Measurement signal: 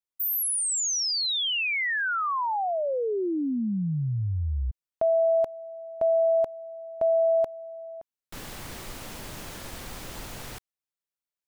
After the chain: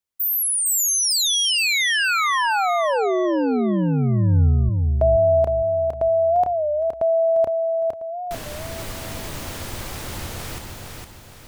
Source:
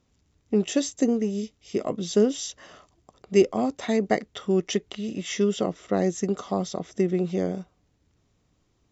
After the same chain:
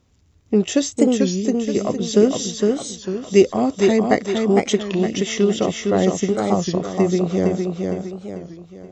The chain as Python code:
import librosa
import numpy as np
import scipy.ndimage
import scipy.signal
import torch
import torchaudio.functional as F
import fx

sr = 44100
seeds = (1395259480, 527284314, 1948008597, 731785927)

p1 = fx.peak_eq(x, sr, hz=87.0, db=7.0, octaves=0.62)
p2 = p1 + fx.echo_feedback(p1, sr, ms=460, feedback_pct=42, wet_db=-4.0, dry=0)
p3 = fx.record_warp(p2, sr, rpm=33.33, depth_cents=160.0)
y = F.gain(torch.from_numpy(p3), 5.5).numpy()